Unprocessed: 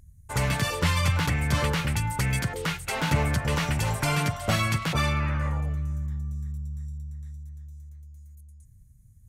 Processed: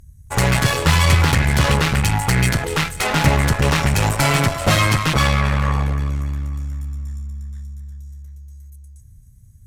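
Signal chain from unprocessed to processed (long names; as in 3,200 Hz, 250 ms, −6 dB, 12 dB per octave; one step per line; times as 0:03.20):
echo with a time of its own for lows and highs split 650 Hz, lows 92 ms, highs 260 ms, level −14.5 dB
harmonic generator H 8 −18 dB, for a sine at −11 dBFS
wrong playback speed 25 fps video run at 24 fps
level +8 dB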